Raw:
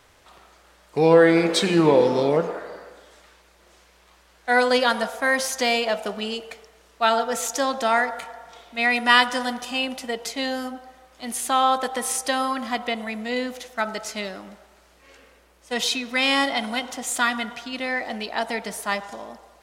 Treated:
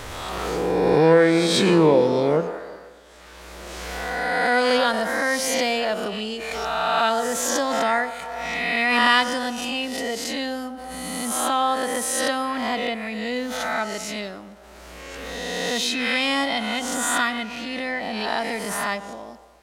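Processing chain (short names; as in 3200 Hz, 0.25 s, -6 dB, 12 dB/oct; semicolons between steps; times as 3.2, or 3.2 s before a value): spectral swells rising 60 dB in 0.89 s; low shelf 420 Hz +5 dB; backwards sustainer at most 21 dB/s; gain -4 dB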